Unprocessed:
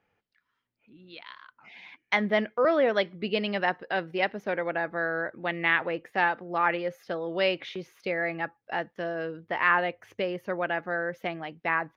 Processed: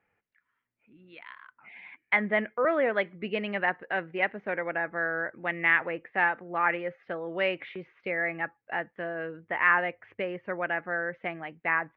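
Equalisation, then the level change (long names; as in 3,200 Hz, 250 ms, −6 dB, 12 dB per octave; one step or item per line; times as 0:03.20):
transistor ladder low-pass 2,600 Hz, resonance 40%
+5.0 dB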